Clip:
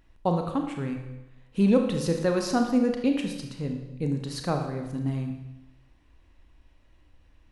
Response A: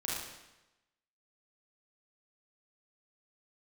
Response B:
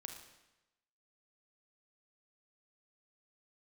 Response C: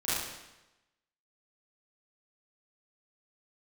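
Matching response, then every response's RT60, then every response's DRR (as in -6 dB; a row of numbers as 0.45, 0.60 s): B; 1.0, 1.0, 1.0 s; -6.0, 3.5, -13.0 dB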